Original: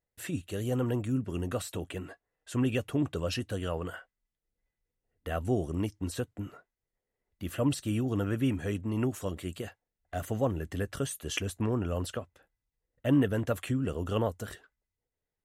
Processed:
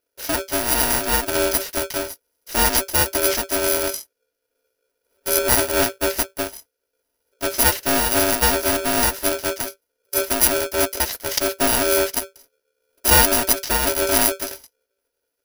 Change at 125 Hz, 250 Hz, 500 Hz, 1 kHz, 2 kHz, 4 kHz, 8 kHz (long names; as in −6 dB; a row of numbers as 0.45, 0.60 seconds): −2.0, +3.0, +11.5, +18.0, +18.5, +19.5, +24.5 decibels